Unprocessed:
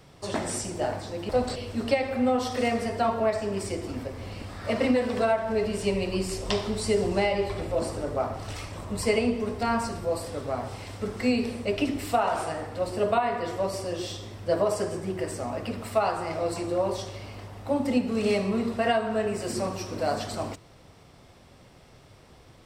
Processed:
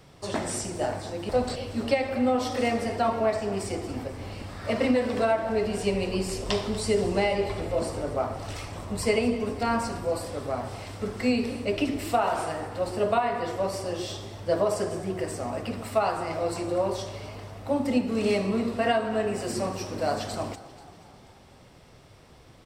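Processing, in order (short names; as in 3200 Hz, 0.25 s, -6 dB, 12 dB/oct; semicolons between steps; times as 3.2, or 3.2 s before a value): frequency-shifting echo 0.242 s, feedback 60%, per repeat +35 Hz, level -17.5 dB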